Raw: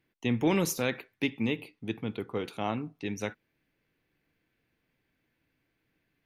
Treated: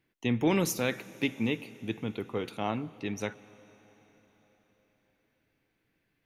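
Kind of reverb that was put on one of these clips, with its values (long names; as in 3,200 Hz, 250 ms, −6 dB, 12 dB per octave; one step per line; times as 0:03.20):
comb and all-pass reverb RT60 4.6 s, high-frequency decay 1×, pre-delay 70 ms, DRR 18.5 dB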